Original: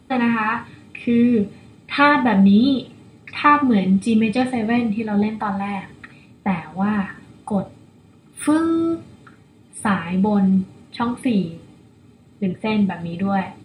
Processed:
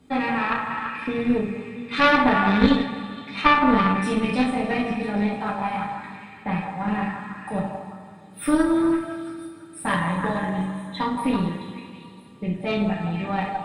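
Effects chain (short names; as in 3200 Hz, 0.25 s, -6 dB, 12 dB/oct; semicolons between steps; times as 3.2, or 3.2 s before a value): 9.88–11.03 ripple EQ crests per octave 1.1, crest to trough 14 dB; delay with a stepping band-pass 0.167 s, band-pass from 790 Hz, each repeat 0.7 oct, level -2.5 dB; reverb, pre-delay 3 ms, DRR -3 dB; added harmonics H 2 -6 dB, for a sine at 1 dBFS; gain -7.5 dB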